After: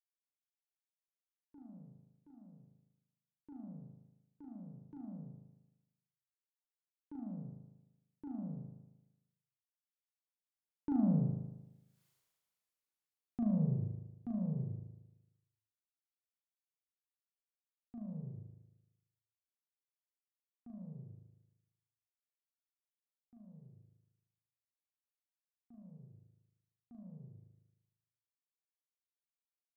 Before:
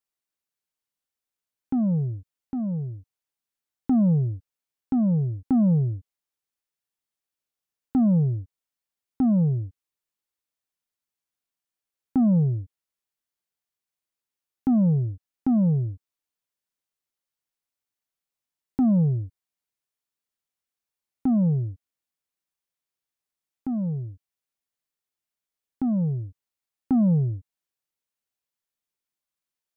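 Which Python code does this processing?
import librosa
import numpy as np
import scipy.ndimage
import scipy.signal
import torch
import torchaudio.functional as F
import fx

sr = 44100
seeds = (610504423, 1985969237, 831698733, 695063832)

y = fx.doppler_pass(x, sr, speed_mps=36, closest_m=3.3, pass_at_s=12.04)
y = fx.room_flutter(y, sr, wall_m=6.5, rt60_s=0.99)
y = y * librosa.db_to_amplitude(7.5)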